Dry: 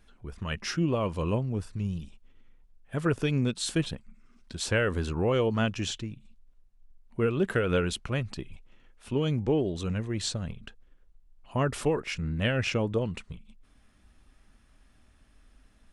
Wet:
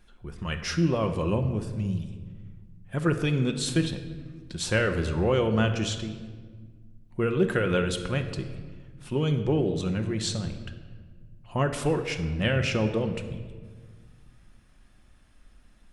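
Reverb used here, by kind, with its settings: simulated room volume 1700 m³, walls mixed, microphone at 0.92 m; trim +1 dB

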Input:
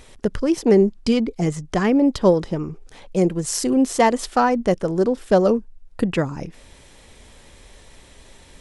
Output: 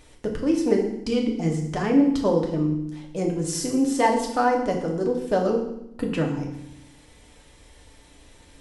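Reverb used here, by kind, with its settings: FDN reverb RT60 0.79 s, low-frequency decay 1.5×, high-frequency decay 0.95×, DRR 0 dB; trim -7.5 dB

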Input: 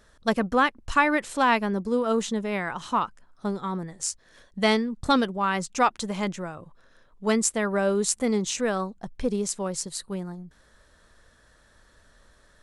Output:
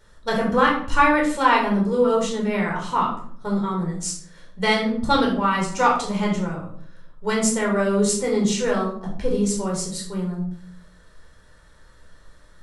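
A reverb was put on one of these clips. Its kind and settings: simulated room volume 780 m³, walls furnished, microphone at 4.6 m; trim -2.5 dB

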